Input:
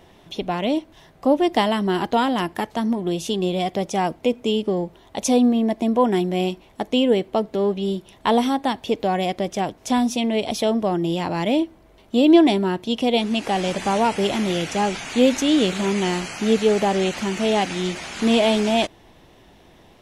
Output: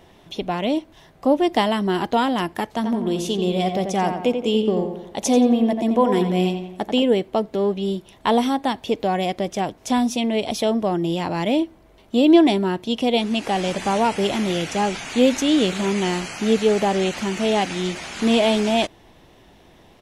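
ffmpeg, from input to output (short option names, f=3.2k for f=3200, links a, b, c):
-filter_complex "[0:a]asplit=3[a][b][c];[a]afade=t=out:st=2.81:d=0.02[d];[b]asplit=2[e][f];[f]adelay=88,lowpass=f=2.7k:p=1,volume=-6dB,asplit=2[g][h];[h]adelay=88,lowpass=f=2.7k:p=1,volume=0.5,asplit=2[i][j];[j]adelay=88,lowpass=f=2.7k:p=1,volume=0.5,asplit=2[k][l];[l]adelay=88,lowpass=f=2.7k:p=1,volume=0.5,asplit=2[m][n];[n]adelay=88,lowpass=f=2.7k:p=1,volume=0.5,asplit=2[o][p];[p]adelay=88,lowpass=f=2.7k:p=1,volume=0.5[q];[e][g][i][k][m][o][q]amix=inputs=7:normalize=0,afade=t=in:st=2.81:d=0.02,afade=t=out:st=7.02:d=0.02[r];[c]afade=t=in:st=7.02:d=0.02[s];[d][r][s]amix=inputs=3:normalize=0"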